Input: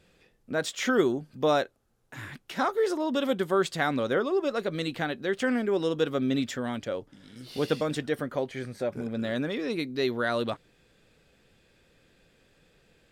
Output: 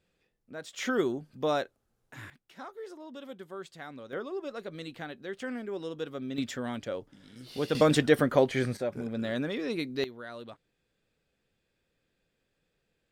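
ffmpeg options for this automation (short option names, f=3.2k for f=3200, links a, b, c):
-af "asetnsamples=n=441:p=0,asendcmd='0.73 volume volume -4.5dB;2.3 volume volume -17dB;4.13 volume volume -10dB;6.38 volume volume -3dB;7.75 volume volume 7dB;8.77 volume volume -2dB;10.04 volume volume -15dB',volume=-13dB"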